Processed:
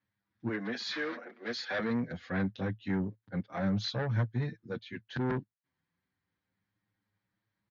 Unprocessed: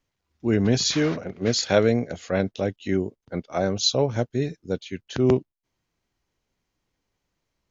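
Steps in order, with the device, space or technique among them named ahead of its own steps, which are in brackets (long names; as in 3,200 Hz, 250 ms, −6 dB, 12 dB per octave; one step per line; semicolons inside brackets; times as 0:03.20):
0:00.48–0:01.79: Bessel high-pass filter 440 Hz, order 8
barber-pole flanger into a guitar amplifier (barber-pole flanger 7 ms +0.28 Hz; soft clipping −23 dBFS, distortion −9 dB; loudspeaker in its box 100–4,100 Hz, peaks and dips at 110 Hz +10 dB, 200 Hz +6 dB, 410 Hz −7 dB, 630 Hz −6 dB, 1,700 Hz +8 dB, 2,800 Hz −6 dB)
level −3 dB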